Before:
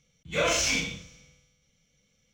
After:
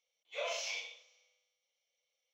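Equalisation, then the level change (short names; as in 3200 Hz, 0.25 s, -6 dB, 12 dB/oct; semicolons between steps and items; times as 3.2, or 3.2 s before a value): running mean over 5 samples; steep high-pass 560 Hz 36 dB/oct; bell 1500 Hz -14 dB 0.76 oct; -7.5 dB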